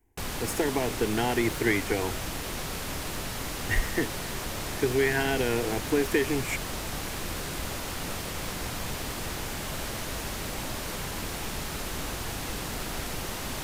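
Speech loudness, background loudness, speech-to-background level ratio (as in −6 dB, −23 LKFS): −28.5 LKFS, −33.5 LKFS, 5.0 dB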